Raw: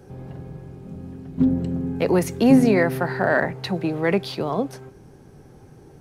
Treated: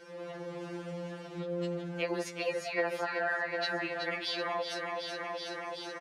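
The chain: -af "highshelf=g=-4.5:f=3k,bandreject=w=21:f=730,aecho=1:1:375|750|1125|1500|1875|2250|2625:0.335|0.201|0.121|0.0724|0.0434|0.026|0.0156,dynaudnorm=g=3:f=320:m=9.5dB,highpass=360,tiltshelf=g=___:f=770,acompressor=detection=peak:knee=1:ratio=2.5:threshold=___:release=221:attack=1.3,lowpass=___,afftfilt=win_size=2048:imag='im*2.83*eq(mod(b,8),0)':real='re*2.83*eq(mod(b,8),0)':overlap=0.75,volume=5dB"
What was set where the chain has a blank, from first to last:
-7.5, -40dB, 6k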